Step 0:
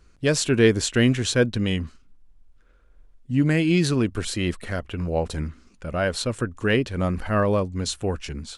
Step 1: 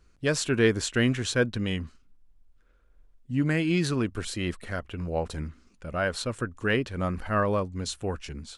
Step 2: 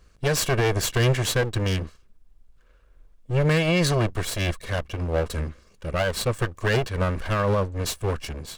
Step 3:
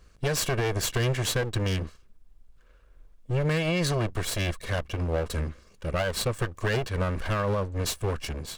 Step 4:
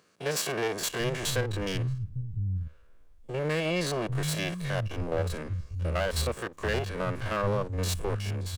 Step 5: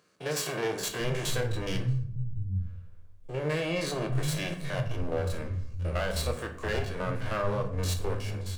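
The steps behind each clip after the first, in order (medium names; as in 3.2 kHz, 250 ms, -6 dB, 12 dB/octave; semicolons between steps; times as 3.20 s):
dynamic bell 1.3 kHz, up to +5 dB, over -36 dBFS, Q 1.1; trim -5.5 dB
comb filter that takes the minimum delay 1.8 ms; peak limiter -20 dBFS, peak gain reduction 7.5 dB; trim +7 dB
compression 3:1, threshold -24 dBFS, peak gain reduction 6 dB
spectrogram pixelated in time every 50 ms; bands offset in time highs, lows 800 ms, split 160 Hz
simulated room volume 81 m³, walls mixed, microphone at 0.45 m; trim -3 dB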